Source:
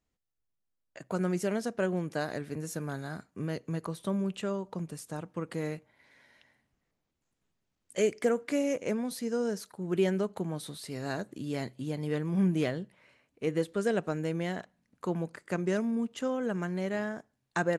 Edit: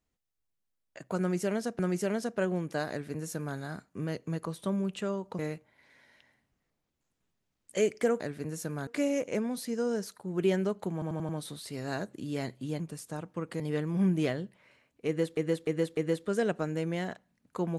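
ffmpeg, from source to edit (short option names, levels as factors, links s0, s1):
-filter_complex "[0:a]asplit=14[s0][s1][s2][s3][s4][s5][s6][s7][s8][s9][s10][s11][s12][s13];[s0]atrim=end=1.792[s14];[s1]atrim=start=1.198:end=4.802[s15];[s2]atrim=start=5.598:end=8.412[s16];[s3]atrim=start=2.308:end=2.982[s17];[s4]atrim=start=8.408:end=10.562[s18];[s5]atrim=start=10.468:end=10.562[s19];[s6]atrim=start=10.468:end=10.562[s20];[s7]atrim=start=10.468:end=10.562[s21];[s8]atrim=start=10.468:end=11.982[s22];[s9]atrim=start=4.798:end=5.602[s23];[s10]atrim=start=11.978:end=13.752[s24];[s11]atrim=start=13.448:end=13.752[s25];[s12]atrim=start=13.448:end=13.752[s26];[s13]atrim=start=13.448[s27];[s14][s15]acrossfade=d=0.004:c1=hsin:c2=hsin[s28];[s28][s16]acrossfade=d=0.004:c1=hsin:c2=hsin[s29];[s29][s17]acrossfade=d=0.004:c1=hsin:c2=hsin[s30];[s30][s18]acrossfade=d=0.004:c1=hsin:c2=hsin[s31];[s31][s19]acrossfade=d=0.004:c1=hsin:c2=hsin[s32];[s32][s20]acrossfade=d=0.004:c1=hsin:c2=hsin[s33];[s33][s21]acrossfade=d=0.004:c1=hsin:c2=hsin[s34];[s34][s22]acrossfade=d=0.004:c1=hsin:c2=hsin[s35];[s35][s23]acrossfade=d=0.004:c1=hsin:c2=hsin[s36];[s36][s24]acrossfade=d=0.004:c1=hsin:c2=hsin[s37];[s37][s25]acrossfade=d=0.004:c1=hsin:c2=hsin[s38];[s38][s26]acrossfade=d=0.004:c1=hsin:c2=hsin[s39];[s39][s27]acrossfade=d=0.004:c1=hsin:c2=hsin"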